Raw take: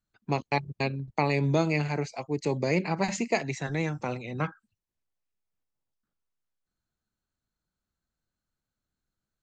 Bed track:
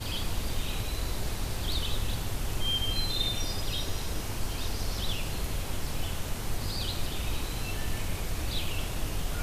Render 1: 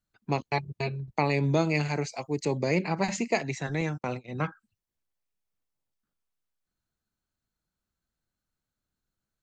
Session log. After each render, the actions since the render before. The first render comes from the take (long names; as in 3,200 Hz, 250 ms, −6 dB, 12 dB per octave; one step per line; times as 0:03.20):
0:00.50–0:01.14: notch comb filter 270 Hz
0:01.74–0:02.44: high-shelf EQ 4,000 Hz → 5,500 Hz +8 dB
0:03.81–0:04.37: noise gate −38 dBFS, range −39 dB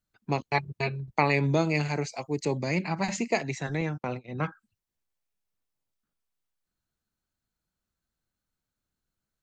0:00.54–0:01.47: dynamic equaliser 1,600 Hz, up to +7 dB, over −42 dBFS, Q 0.85
0:02.60–0:03.07: parametric band 450 Hz −9 dB 0.61 octaves
0:03.77–0:04.43: high-frequency loss of the air 110 metres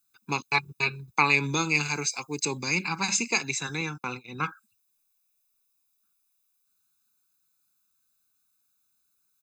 RIAA equalisation recording
comb filter 0.8 ms, depth 89%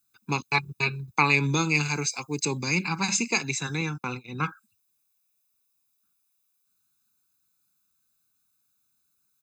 high-pass filter 81 Hz
low-shelf EQ 190 Hz +9.5 dB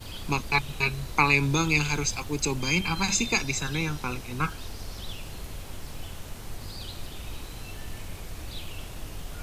mix in bed track −6 dB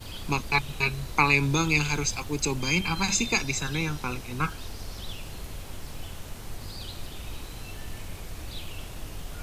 no processing that can be heard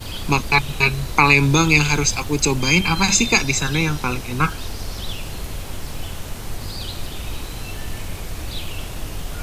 level +9 dB
brickwall limiter −1 dBFS, peak gain reduction 3 dB